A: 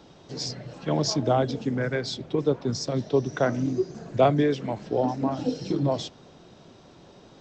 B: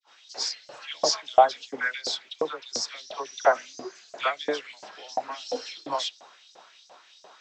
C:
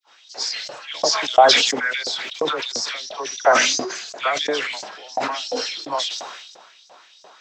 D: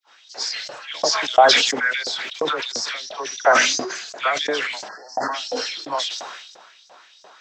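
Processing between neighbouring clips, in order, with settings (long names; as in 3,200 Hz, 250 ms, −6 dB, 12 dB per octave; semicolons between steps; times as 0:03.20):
all-pass dispersion lows, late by 72 ms, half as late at 1,300 Hz; downward expander −49 dBFS; auto-filter high-pass saw up 2.9 Hz 610–6,200 Hz; level +3 dB
level that may fall only so fast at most 42 dB per second; level +3.5 dB
time-frequency box erased 0:04.88–0:05.33, 2,000–4,200 Hz; parametric band 1,600 Hz +3.5 dB 0.77 octaves; level −1 dB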